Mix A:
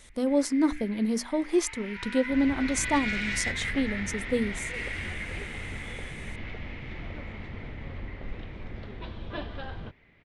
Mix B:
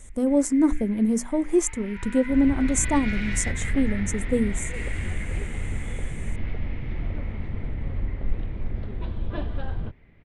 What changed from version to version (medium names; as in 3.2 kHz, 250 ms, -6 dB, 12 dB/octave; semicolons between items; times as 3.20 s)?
speech: add resonant high shelf 5.8 kHz +9 dB, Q 3; master: add tilt EQ -2.5 dB/octave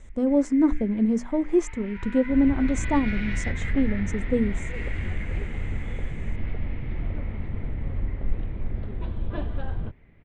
master: add distance through air 150 m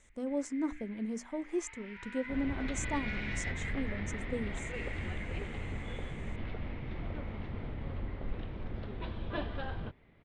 speech -9.5 dB; first sound -7.5 dB; master: add tilt EQ +2.5 dB/octave